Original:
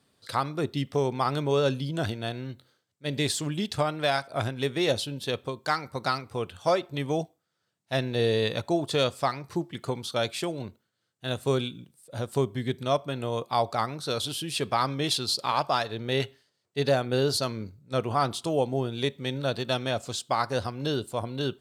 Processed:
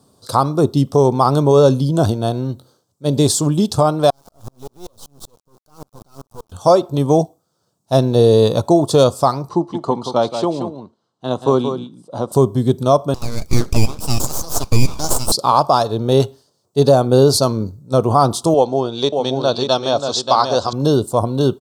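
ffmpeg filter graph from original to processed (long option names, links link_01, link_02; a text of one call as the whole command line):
ffmpeg -i in.wav -filter_complex "[0:a]asettb=1/sr,asplit=3[link_01][link_02][link_03];[link_01]atrim=end=4.104[link_04];[link_02]atrim=start=4.1:end=6.52,asetpts=PTS-STARTPTS,afade=type=in:duration=0.004:curve=qsin,afade=type=out:start_time=2.416:duration=0.004:curve=qsin,acompressor=threshold=-35dB:ratio=4:attack=3.2:release=140:knee=1:detection=peak,acrusher=bits=5:dc=4:mix=0:aa=0.000001,aeval=exprs='val(0)*pow(10,-38*if(lt(mod(-5.2*n/s,1),2*abs(-5.2)/1000),1-mod(-5.2*n/s,1)/(2*abs(-5.2)/1000),(mod(-5.2*n/s,1)-2*abs(-5.2)/1000)/(1-2*abs(-5.2)/1000))/20)':channel_layout=same[link_05];[link_03]atrim=start=6.516[link_06];[link_04][link_05]acrossfade=duration=0.004:curve1=hsin:curve2=qsin[link_07];[link_07][link_06]acrossfade=duration=0.004:curve1=qsin:curve2=hsin,asettb=1/sr,asplit=3[link_08][link_09][link_10];[link_08]atrim=end=9.494[link_11];[link_09]atrim=start=9.49:end=12.32,asetpts=PTS-STARTPTS,afade=type=in:duration=0.004:curve=qsin,afade=type=out:start_time=2.826:duration=0.004:curve=qsin,highpass=230,lowpass=3700,aecho=1:1:1:0.32,atrim=end_sample=124803,aecho=1:1:178:0.376,atrim=end_sample=124803[link_12];[link_10]atrim=start=12.316[link_13];[link_11][link_12]acrossfade=duration=0.004:curve1=hsin:curve2=qsin[link_14];[link_14][link_13]acrossfade=duration=0.004:curve1=qsin:curve2=hsin,asettb=1/sr,asplit=3[link_15][link_16][link_17];[link_15]atrim=end=13.144[link_18];[link_16]atrim=start=13.14:end=15.32,asetpts=PTS-STARTPTS,afade=type=in:duration=0.004:curve=qsin,afade=type=out:start_time=2.176:duration=0.004:curve=qsin,highpass=frequency=1200:width_type=q:width=6.4,aeval=exprs='abs(val(0))':channel_layout=same[link_19];[link_17]atrim=start=15.316[link_20];[link_18][link_19]acrossfade=duration=0.004:curve1=hsin:curve2=qsin[link_21];[link_21][link_20]acrossfade=duration=0.004:curve1=qsin:curve2=hsin,asettb=1/sr,asplit=3[link_22][link_23][link_24];[link_22]atrim=end=18.544[link_25];[link_23]atrim=start=18.54:end=20.73,asetpts=PTS-STARTPTS,afade=type=in:duration=0.004:curve=qsin,afade=type=out:start_time=2.186:duration=0.004:curve=qsin,lowpass=frequency=4700:width=0.5412,lowpass=frequency=4700:width=1.3066,aemphasis=mode=production:type=riaa,aecho=1:1:583:0.501,atrim=end_sample=96579[link_26];[link_24]atrim=start=20.726[link_27];[link_25][link_26]acrossfade=duration=0.004:curve1=hsin:curve2=qsin[link_28];[link_28][link_27]acrossfade=duration=0.004:curve1=qsin:curve2=hsin,firequalizer=gain_entry='entry(1100,0);entry(1900,-24);entry(3600,-9);entry(5500,-1)':delay=0.05:min_phase=1,alimiter=level_in=15.5dB:limit=-1dB:release=50:level=0:latency=1,volume=-1dB" out.wav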